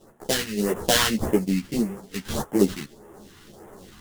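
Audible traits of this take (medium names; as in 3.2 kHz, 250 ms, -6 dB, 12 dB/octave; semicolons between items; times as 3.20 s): aliases and images of a low sample rate 2.4 kHz, jitter 20%; phasing stages 2, 1.7 Hz, lowest notch 520–4100 Hz; random-step tremolo; a shimmering, thickened sound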